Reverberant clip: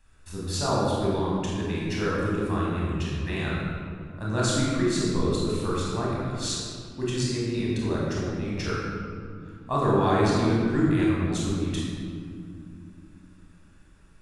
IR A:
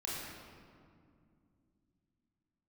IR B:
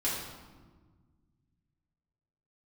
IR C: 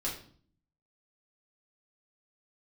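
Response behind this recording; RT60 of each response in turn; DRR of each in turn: A; 2.3 s, 1.5 s, 0.50 s; -6.0 dB, -8.0 dB, -5.5 dB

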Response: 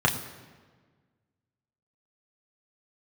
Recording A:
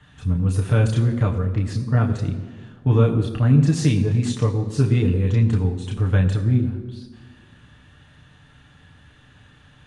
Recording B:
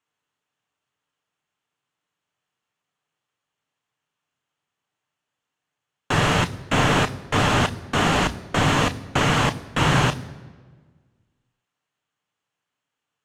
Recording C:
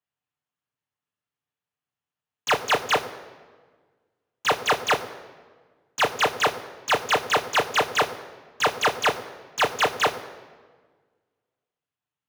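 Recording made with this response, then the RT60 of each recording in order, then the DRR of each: A; 1.5 s, 1.5 s, 1.5 s; -0.5 dB, 10.0 dB, 4.0 dB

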